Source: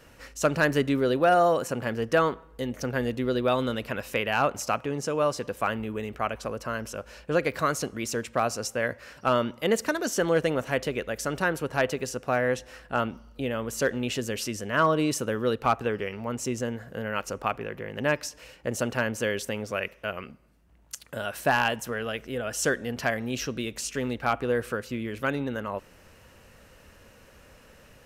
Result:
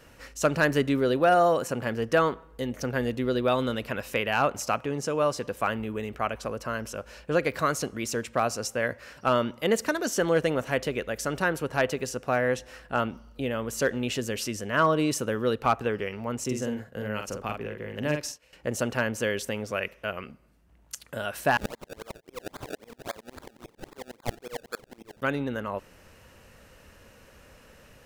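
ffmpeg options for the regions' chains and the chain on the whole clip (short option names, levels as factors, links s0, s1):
-filter_complex "[0:a]asettb=1/sr,asplit=3[s0][s1][s2];[s0]atrim=end=16.444[s3];[s1]atrim=start=16.44:end=18.53,asetpts=PTS-STARTPTS,afade=t=in:d=0.004:c=qsin,afade=t=out:st=2.086:d=0.004:c=qsin,agate=range=0.0224:threshold=0.0126:ratio=3:release=100:detection=peak,asplit=2[s4][s5];[s5]adelay=47,volume=0.531[s6];[s4][s6]amix=inputs=2:normalize=0,atrim=end_sample=92169,acrossover=split=480|3000[s7][s8][s9];[s8]acompressor=threshold=0.00631:ratio=1.5:attack=3.2:release=140:knee=2.83:detection=peak[s10];[s7][s10][s9]amix=inputs=3:normalize=0[s11];[s2]atrim=start=18.526[s12];[s3][s11]acrossfade=d=0.004:c1=hsin:c2=qsin[s13];[s13][s12]acrossfade=d=0.004:c1=qsin:c2=hsin,asettb=1/sr,asplit=3[s14][s15][s16];[s14]atrim=end=21.574[s17];[s15]atrim=start=21.57:end=25.22,asetpts=PTS-STARTPTS,afade=t=in:d=0.004:c=qsin,afade=t=out:st=3.646:d=0.004:c=qsin,highpass=410,acrusher=samples=29:mix=1:aa=0.000001:lfo=1:lforange=29:lforate=3.7,aeval=exprs='val(0)*pow(10,-31*if(lt(mod(-11*n/s,1),2*abs(-11)/1000),1-mod(-11*n/s,1)/(2*abs(-11)/1000),(mod(-11*n/s,1)-2*abs(-11)/1000)/(1-2*abs(-11)/1000))/20)':c=same[s18];[s16]atrim=start=25.216[s19];[s17][s18]acrossfade=d=0.004:c1=hsin:c2=qsin[s20];[s20][s19]acrossfade=d=0.004:c1=qsin:c2=hsin"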